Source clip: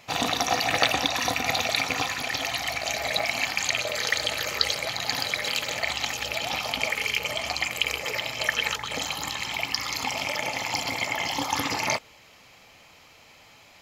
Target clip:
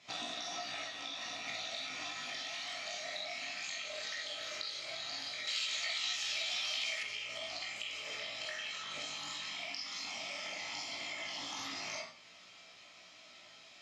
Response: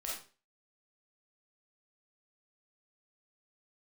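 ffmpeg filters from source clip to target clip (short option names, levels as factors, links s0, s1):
-filter_complex "[0:a]asettb=1/sr,asplit=3[s0][s1][s2];[s0]atrim=end=0.824[s3];[s1]atrim=start=0.82:end=1.47,asetpts=PTS-STARTPTS,afade=t=in:d=0.004:c=qsin,afade=t=out:st=0.646:d=0.004:c=qsin,acrossover=split=560|6000[s4][s5][s6];[s4]acompressor=threshold=0.00891:ratio=4[s7];[s5]acompressor=threshold=0.0282:ratio=4[s8];[s6]acompressor=threshold=0.00447:ratio=4[s9];[s7][s8][s9]amix=inputs=3:normalize=0[s10];[s2]atrim=start=1.466[s11];[s3][s10]acrossfade=d=0.004:c1=hsin:c2=qsin[s12];[s12][s11]acrossfade=d=0.004:c1=qsin:c2=hsin,highpass=110,equalizer=f=120:t=q:w=4:g=-7,equalizer=f=500:t=q:w=4:g=-8,equalizer=f=860:t=q:w=4:g=-5,equalizer=f=3600:t=q:w=4:g=6,equalizer=f=5300:t=q:w=4:g=4,lowpass=f=8300:w=0.5412,lowpass=f=8300:w=1.3066[s13];[1:a]atrim=start_sample=2205[s14];[s13][s14]afir=irnorm=-1:irlink=0,flanger=delay=16.5:depth=4.7:speed=0.15,acompressor=threshold=0.0141:ratio=6,asettb=1/sr,asplit=3[s15][s16][s17];[s15]atrim=end=5.474[s18];[s16]atrim=start=5.47:end=7.03,asetpts=PTS-STARTPTS,afade=t=in:d=0.004:c=qsin,afade=t=out:st=1.556:d=0.004:c=qsin,tiltshelf=f=1100:g=-7.5[s19];[s17]atrim=start=7.026[s20];[s18][s19]acrossfade=d=0.004:c1=hsin:c2=qsin[s21];[s21][s20]acrossfade=d=0.004:c1=qsin:c2=hsin,volume=0.75"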